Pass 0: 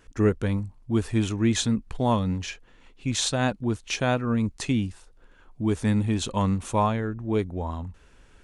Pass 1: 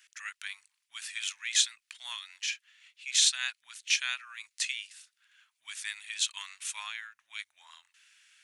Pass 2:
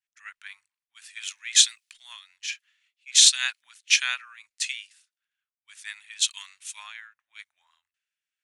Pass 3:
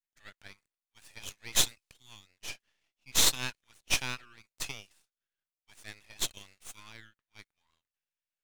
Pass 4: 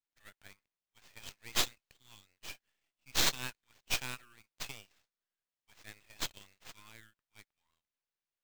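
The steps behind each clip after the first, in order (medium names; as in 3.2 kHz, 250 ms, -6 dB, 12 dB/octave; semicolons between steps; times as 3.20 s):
inverse Chebyshev high-pass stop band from 430 Hz, stop band 70 dB; trim +3.5 dB
three bands expanded up and down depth 100%
half-wave rectifier; trim -4.5 dB
sample-rate reducer 11 kHz, jitter 20%; trim -5 dB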